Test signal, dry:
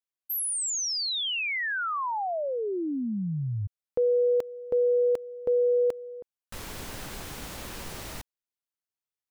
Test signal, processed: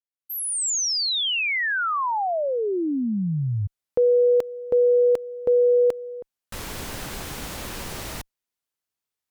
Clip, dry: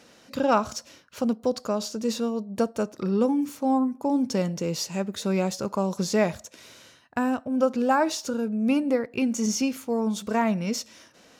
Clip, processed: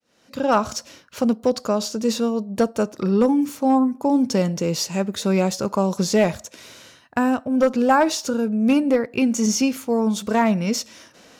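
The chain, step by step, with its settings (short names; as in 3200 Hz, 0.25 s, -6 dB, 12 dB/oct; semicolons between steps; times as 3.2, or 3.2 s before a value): opening faded in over 0.69 s; one-sided clip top -15.5 dBFS; gain +5.5 dB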